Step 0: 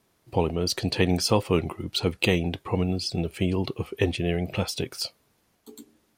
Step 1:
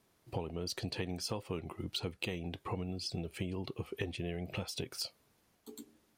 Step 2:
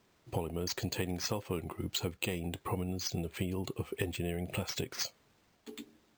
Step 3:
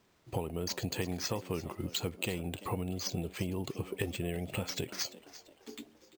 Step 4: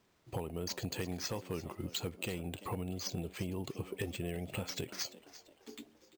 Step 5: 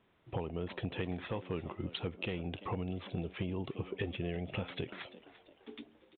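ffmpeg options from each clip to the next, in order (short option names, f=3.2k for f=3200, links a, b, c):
-af "acompressor=threshold=-31dB:ratio=6,volume=-4dB"
-af "acrusher=samples=4:mix=1:aa=0.000001,volume=3dB"
-filter_complex "[0:a]asplit=5[a][b][c][d][e];[b]adelay=342,afreqshift=92,volume=-16.5dB[f];[c]adelay=684,afreqshift=184,volume=-23.4dB[g];[d]adelay=1026,afreqshift=276,volume=-30.4dB[h];[e]adelay=1368,afreqshift=368,volume=-37.3dB[i];[a][f][g][h][i]amix=inputs=5:normalize=0"
-af "volume=24.5dB,asoftclip=hard,volume=-24.5dB,volume=-3dB"
-af "aresample=8000,aresample=44100,volume=1.5dB"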